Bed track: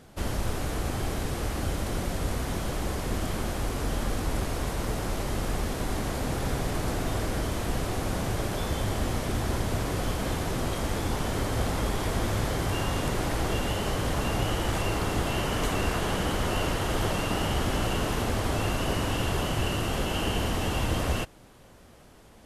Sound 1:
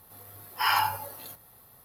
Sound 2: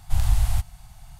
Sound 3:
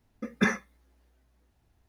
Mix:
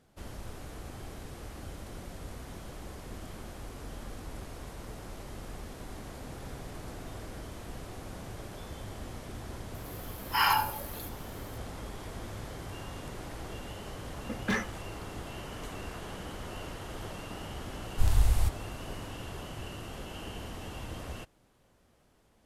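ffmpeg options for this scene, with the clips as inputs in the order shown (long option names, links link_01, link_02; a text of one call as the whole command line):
ffmpeg -i bed.wav -i cue0.wav -i cue1.wav -i cue2.wav -filter_complex "[0:a]volume=-13.5dB[link_01];[3:a]asoftclip=type=hard:threshold=-22.5dB[link_02];[1:a]atrim=end=1.84,asetpts=PTS-STARTPTS,volume=-1dB,afade=type=in:duration=0.004:curve=hsin,afade=type=out:start_time=1.836:duration=0.004:curve=hsin,adelay=9740[link_03];[link_02]atrim=end=1.88,asetpts=PTS-STARTPTS,volume=-2dB,afade=type=in:duration=0.004:curve=hsin,afade=type=out:start_time=1.876:duration=0.004:curve=hsin,adelay=14070[link_04];[2:a]atrim=end=1.19,asetpts=PTS-STARTPTS,volume=-4dB,afade=type=in:duration=0.004:curve=hsin,afade=type=out:start_time=1.186:duration=0.004:curve=hsin,adelay=17880[link_05];[link_01][link_03][link_04][link_05]amix=inputs=4:normalize=0" out.wav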